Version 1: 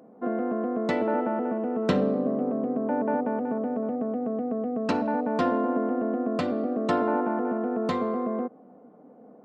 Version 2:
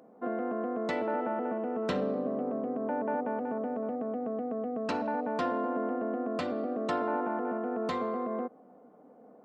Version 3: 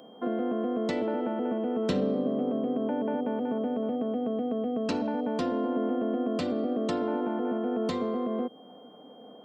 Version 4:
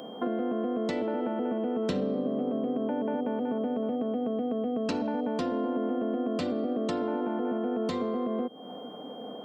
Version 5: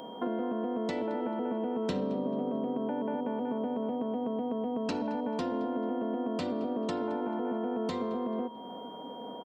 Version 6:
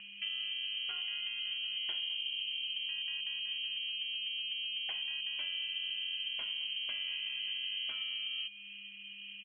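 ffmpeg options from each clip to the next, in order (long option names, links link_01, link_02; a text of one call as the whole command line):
ffmpeg -i in.wav -filter_complex "[0:a]equalizer=frequency=150:width_type=o:width=3:gain=-6.5,asplit=2[link_01][link_02];[link_02]alimiter=limit=-24dB:level=0:latency=1,volume=2dB[link_03];[link_01][link_03]amix=inputs=2:normalize=0,volume=-8dB" out.wav
ffmpeg -i in.wav -filter_complex "[0:a]acrossover=split=490|3000[link_01][link_02][link_03];[link_02]acompressor=threshold=-46dB:ratio=4[link_04];[link_01][link_04][link_03]amix=inputs=3:normalize=0,aeval=exprs='val(0)+0.000631*sin(2*PI*3200*n/s)':channel_layout=same,volume=6dB" out.wav
ffmpeg -i in.wav -af "acompressor=threshold=-40dB:ratio=2.5,volume=8.5dB" out.wav
ffmpeg -i in.wav -filter_complex "[0:a]aeval=exprs='val(0)+0.00562*sin(2*PI*950*n/s)':channel_layout=same,asplit=2[link_01][link_02];[link_02]adelay=219,lowpass=frequency=3200:poles=1,volume=-16dB,asplit=2[link_03][link_04];[link_04]adelay=219,lowpass=frequency=3200:poles=1,volume=0.48,asplit=2[link_05][link_06];[link_06]adelay=219,lowpass=frequency=3200:poles=1,volume=0.48,asplit=2[link_07][link_08];[link_08]adelay=219,lowpass=frequency=3200:poles=1,volume=0.48[link_09];[link_01][link_03][link_05][link_07][link_09]amix=inputs=5:normalize=0,volume=-2.5dB" out.wav
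ffmpeg -i in.wav -af "lowpass=frequency=2900:width_type=q:width=0.5098,lowpass=frequency=2900:width_type=q:width=0.6013,lowpass=frequency=2900:width_type=q:width=0.9,lowpass=frequency=2900:width_type=q:width=2.563,afreqshift=-3400,volume=-6dB" out.wav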